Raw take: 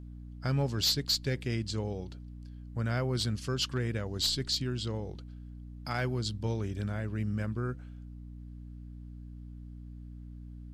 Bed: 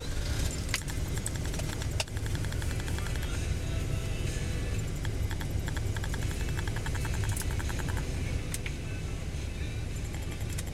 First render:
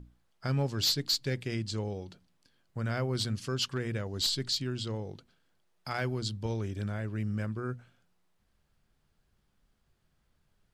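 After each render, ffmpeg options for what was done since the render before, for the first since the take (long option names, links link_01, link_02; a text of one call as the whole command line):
ffmpeg -i in.wav -af "bandreject=frequency=60:width_type=h:width=6,bandreject=frequency=120:width_type=h:width=6,bandreject=frequency=180:width_type=h:width=6,bandreject=frequency=240:width_type=h:width=6,bandreject=frequency=300:width_type=h:width=6" out.wav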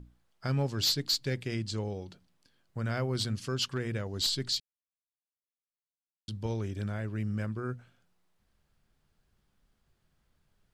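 ffmpeg -i in.wav -filter_complex "[0:a]asplit=3[link_01][link_02][link_03];[link_01]atrim=end=4.6,asetpts=PTS-STARTPTS,afade=type=out:start_time=4.596:duration=0.004:curve=hsin[link_04];[link_02]atrim=start=4.6:end=6.28,asetpts=PTS-STARTPTS,volume=0[link_05];[link_03]atrim=start=6.28,asetpts=PTS-STARTPTS,afade=type=in:duration=0.004:curve=hsin[link_06];[link_04][link_05][link_06]concat=n=3:v=0:a=1" out.wav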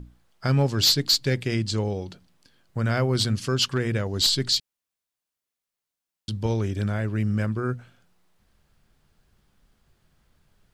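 ffmpeg -i in.wav -af "volume=8.5dB" out.wav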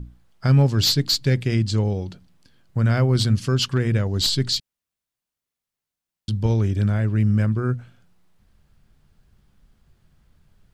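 ffmpeg -i in.wav -af "bass=frequency=250:gain=7,treble=frequency=4000:gain=-1" out.wav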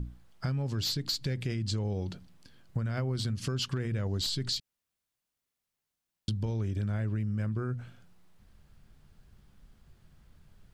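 ffmpeg -i in.wav -af "alimiter=limit=-18dB:level=0:latency=1:release=97,acompressor=threshold=-29dB:ratio=6" out.wav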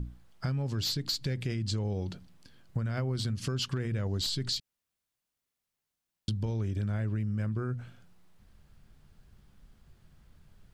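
ffmpeg -i in.wav -af anull out.wav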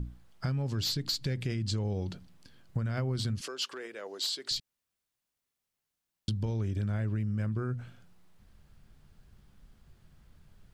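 ffmpeg -i in.wav -filter_complex "[0:a]asettb=1/sr,asplit=3[link_01][link_02][link_03];[link_01]atrim=end=3.414[link_04];[link_02]atrim=start=3.41:end=4.51,asetpts=PTS-STARTPTS,afade=type=in:duration=0.004:curve=qsin,afade=type=out:start_time=1.096:duration=0.004:curve=qsin,highpass=frequency=390:width=0.5412,highpass=frequency=390:width=1.3066[link_05];[link_03]atrim=start=4.506[link_06];[link_04][link_05]acrossfade=duration=0.004:curve1=hsin:curve2=qsin[link_07];[link_07][link_06]acrossfade=duration=0.004:curve1=qsin:curve2=hsin" out.wav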